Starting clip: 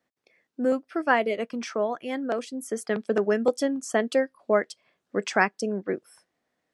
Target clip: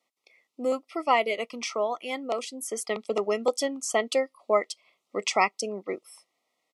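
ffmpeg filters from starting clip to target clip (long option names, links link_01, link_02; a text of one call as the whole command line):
ffmpeg -i in.wav -af "highpass=frequency=1100:poles=1,aresample=32000,aresample=44100,asuperstop=centerf=1600:order=12:qfactor=2.8,volume=5.5dB" out.wav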